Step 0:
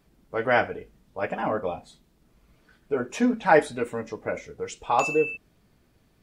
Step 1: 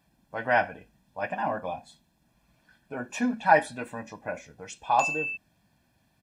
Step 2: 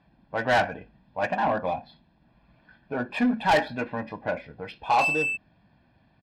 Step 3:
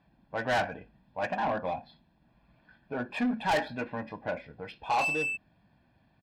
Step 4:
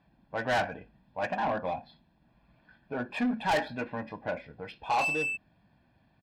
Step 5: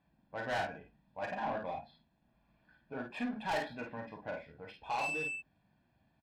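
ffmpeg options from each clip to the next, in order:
-af "highpass=f=170:p=1,aecho=1:1:1.2:0.73,volume=-3.5dB"
-af "aresample=11025,asoftclip=type=tanh:threshold=-22.5dB,aresample=44100,adynamicsmooth=sensitivity=6:basefreq=3.4k,volume=6.5dB"
-af "asoftclip=type=tanh:threshold=-17dB,volume=-4dB"
-af anull
-af "aecho=1:1:37|51:0.376|0.531,volume=-8.5dB"

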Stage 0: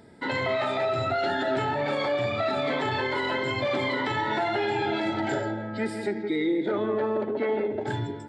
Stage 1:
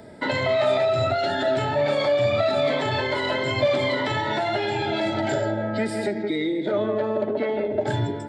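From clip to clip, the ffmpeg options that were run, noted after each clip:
-filter_complex "[0:a]acrossover=split=170|3000[a][b][c];[b]acompressor=threshold=-31dB:ratio=6[d];[a][d][c]amix=inputs=3:normalize=0,equalizer=f=610:w=7.3:g=12.5,volume=6.5dB"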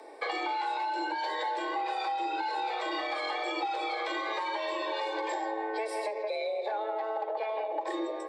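-af "acompressor=threshold=-25dB:ratio=6,afreqshift=220,volume=-4.5dB"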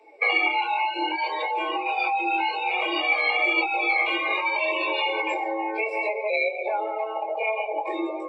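-af "flanger=delay=18.5:depth=5.5:speed=0.62,superequalizer=11b=0.562:12b=3.98:16b=0.355,afftdn=nr=17:nf=-40,volume=8.5dB"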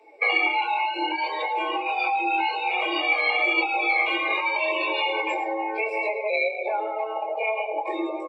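-af "aecho=1:1:108:0.188"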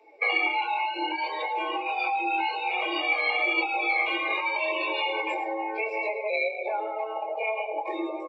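-af "aresample=16000,aresample=44100,volume=-3dB"

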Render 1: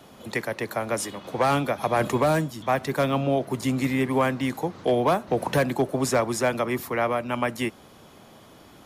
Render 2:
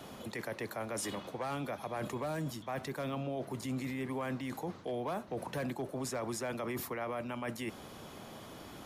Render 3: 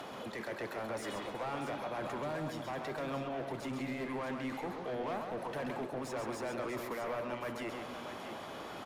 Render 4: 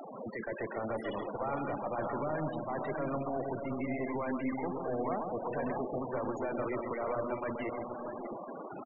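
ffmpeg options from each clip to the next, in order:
-af "areverse,acompressor=threshold=-32dB:ratio=12,areverse,alimiter=level_in=6.5dB:limit=-24dB:level=0:latency=1:release=25,volume=-6.5dB,volume=1dB"
-filter_complex "[0:a]acompressor=mode=upward:threshold=-44dB:ratio=2.5,asplit=2[a][b];[b]highpass=f=720:p=1,volume=18dB,asoftclip=type=tanh:threshold=-29dB[c];[a][c]amix=inputs=2:normalize=0,lowpass=f=1.8k:p=1,volume=-6dB,asplit=2[d][e];[e]aecho=0:1:133|271|368|637:0.531|0.126|0.133|0.355[f];[d][f]amix=inputs=2:normalize=0,volume=-3.5dB"
-filter_complex "[0:a]aeval=exprs='0.0422*(cos(1*acos(clip(val(0)/0.0422,-1,1)))-cos(1*PI/2))+0.00841*(cos(2*acos(clip(val(0)/0.0422,-1,1)))-cos(2*PI/2))':c=same,asplit=2[a][b];[b]adelay=583.1,volume=-7dB,highshelf=f=4k:g=-13.1[c];[a][c]amix=inputs=2:normalize=0,afftfilt=real='re*gte(hypot(re,im),0.0158)':imag='im*gte(hypot(re,im),0.0158)':win_size=1024:overlap=0.75,volume=3dB"

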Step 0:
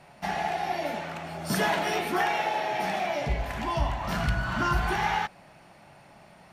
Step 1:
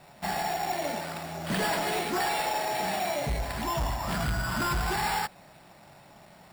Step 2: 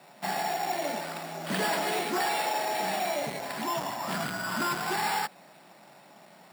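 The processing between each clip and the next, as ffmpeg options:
-af "acrusher=samples=7:mix=1:aa=0.000001,volume=24.5dB,asoftclip=hard,volume=-24.5dB"
-af "highpass=f=180:w=0.5412,highpass=f=180:w=1.3066"

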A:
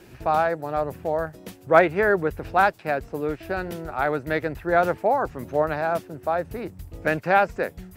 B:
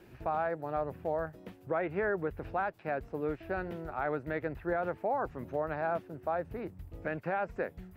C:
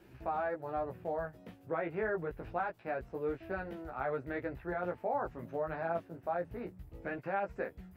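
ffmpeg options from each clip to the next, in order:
-filter_complex "[0:a]acrossover=split=3300[a][b];[b]acompressor=threshold=-58dB:ratio=4:attack=1:release=60[c];[a][c]amix=inputs=2:normalize=0,equalizer=f=7k:w=0.62:g=-6.5,alimiter=limit=-15.5dB:level=0:latency=1:release=143,volume=-7dB"
-af "flanger=delay=15:depth=3:speed=0.26"

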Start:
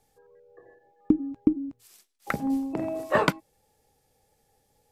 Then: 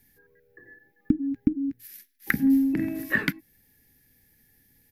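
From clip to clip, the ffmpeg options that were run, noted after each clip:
-af "equalizer=f=610:w=6.4:g=-4,acompressor=threshold=-26dB:ratio=6,firequalizer=gain_entry='entry(150,0);entry(260,5);entry(450,-13);entry(740,-19);entry(1200,-14);entry(1700,8);entry(2800,-3);entry(5600,-3);entry(8000,-9);entry(12000,10)':delay=0.05:min_phase=1,volume=5.5dB"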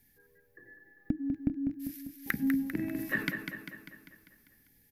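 -filter_complex "[0:a]acompressor=threshold=-26dB:ratio=2,asplit=2[a][b];[b]aecho=0:1:198|396|594|792|990|1188|1386:0.447|0.246|0.135|0.0743|0.0409|0.0225|0.0124[c];[a][c]amix=inputs=2:normalize=0,volume=-4dB"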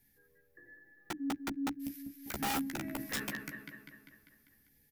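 -filter_complex "[0:a]aeval=exprs='(mod(18.8*val(0)+1,2)-1)/18.8':c=same,asplit=2[a][b];[b]adelay=14,volume=-5dB[c];[a][c]amix=inputs=2:normalize=0,volume=-4.5dB"

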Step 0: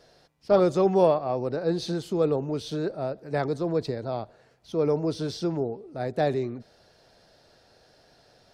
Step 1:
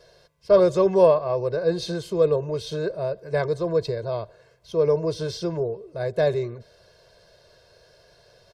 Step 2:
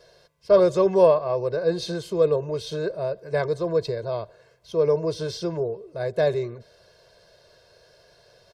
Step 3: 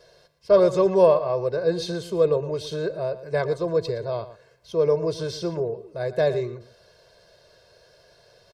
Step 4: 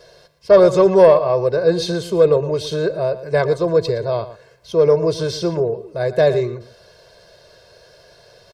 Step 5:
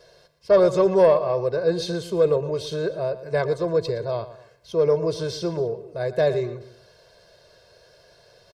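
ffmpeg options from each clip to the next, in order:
-af "aecho=1:1:1.9:0.94"
-af "lowshelf=f=120:g=-4.5"
-filter_complex "[0:a]asplit=2[a][b];[b]adelay=116.6,volume=-14dB,highshelf=f=4k:g=-2.62[c];[a][c]amix=inputs=2:normalize=0"
-af "asoftclip=type=tanh:threshold=-7.5dB,volume=7.5dB"
-af "aecho=1:1:249:0.075,volume=-6dB"

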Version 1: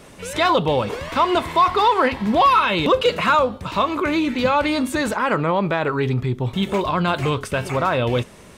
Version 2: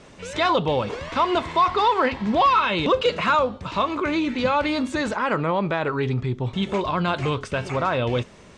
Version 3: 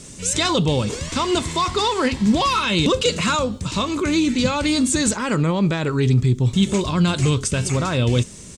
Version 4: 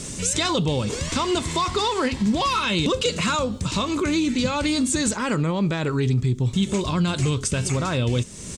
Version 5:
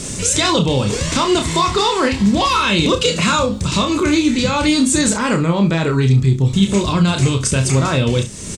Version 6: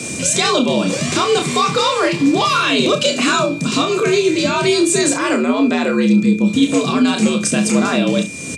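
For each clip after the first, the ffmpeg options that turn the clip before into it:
-af "lowpass=f=7.4k:w=0.5412,lowpass=f=7.4k:w=1.3066,volume=-3dB"
-af "firequalizer=gain_entry='entry(160,0);entry(680,-14);entry(7600,14)':delay=0.05:min_phase=1,volume=9dB"
-af "acompressor=threshold=-34dB:ratio=2,volume=6.5dB"
-af "aecho=1:1:30|68:0.531|0.188,volume=6dB"
-af "afreqshift=79,aeval=exprs='val(0)+0.0316*sin(2*PI*2400*n/s)':c=same"

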